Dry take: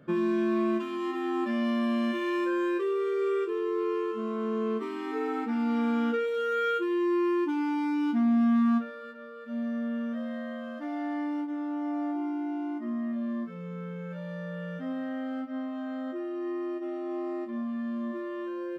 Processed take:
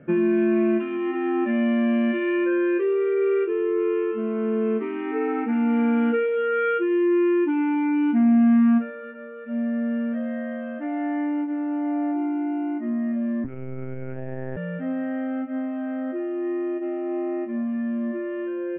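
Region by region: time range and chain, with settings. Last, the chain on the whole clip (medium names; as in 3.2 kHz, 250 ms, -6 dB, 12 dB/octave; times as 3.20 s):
13.44–14.57 s: treble shelf 2 kHz -7 dB + monotone LPC vocoder at 8 kHz 130 Hz
whole clip: elliptic low-pass 2.6 kHz, stop band 60 dB; peaking EQ 1.1 kHz -12.5 dB 0.4 oct; trim +7.5 dB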